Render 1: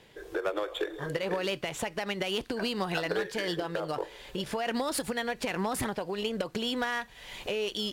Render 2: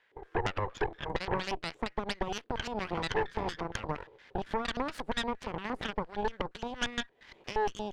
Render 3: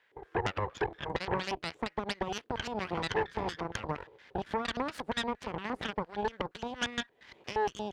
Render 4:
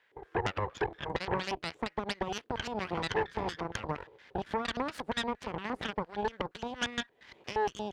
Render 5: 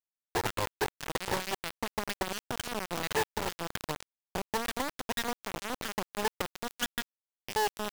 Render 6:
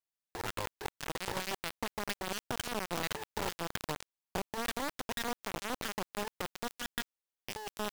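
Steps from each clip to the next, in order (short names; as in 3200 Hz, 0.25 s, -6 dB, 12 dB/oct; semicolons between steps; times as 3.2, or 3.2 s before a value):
LFO band-pass square 4.3 Hz 410–1600 Hz; added harmonics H 6 -6 dB, 7 -28 dB, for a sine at -22 dBFS
HPF 54 Hz
nothing audible
bit-crush 5-bit
negative-ratio compressor -32 dBFS, ratio -0.5; gain -2.5 dB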